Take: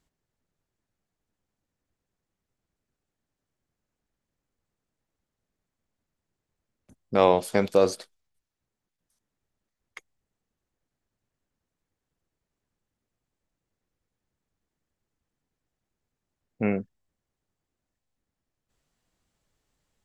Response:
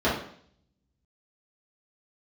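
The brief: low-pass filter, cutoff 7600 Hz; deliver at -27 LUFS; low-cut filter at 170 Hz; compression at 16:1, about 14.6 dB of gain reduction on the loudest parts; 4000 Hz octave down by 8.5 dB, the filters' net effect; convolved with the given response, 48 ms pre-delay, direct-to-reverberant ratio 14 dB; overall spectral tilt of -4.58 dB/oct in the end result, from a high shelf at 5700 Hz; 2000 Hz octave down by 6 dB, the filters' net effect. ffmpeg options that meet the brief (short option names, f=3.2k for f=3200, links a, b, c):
-filter_complex "[0:a]highpass=170,lowpass=7.6k,equalizer=f=2k:t=o:g=-5,equalizer=f=4k:t=o:g=-6.5,highshelf=f=5.7k:g=-6,acompressor=threshold=-29dB:ratio=16,asplit=2[a][b];[1:a]atrim=start_sample=2205,adelay=48[c];[b][c]afir=irnorm=-1:irlink=0,volume=-30dB[d];[a][d]amix=inputs=2:normalize=0,volume=10dB"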